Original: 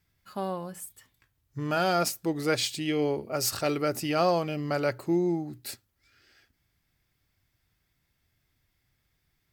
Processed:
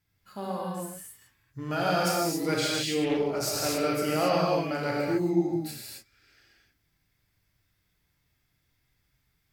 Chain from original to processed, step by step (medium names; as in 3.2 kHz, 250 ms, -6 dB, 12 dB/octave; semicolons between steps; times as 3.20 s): gated-style reverb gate 300 ms flat, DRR -5 dB; 3.04–3.76 s: loudspeaker Doppler distortion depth 0.24 ms; trim -5 dB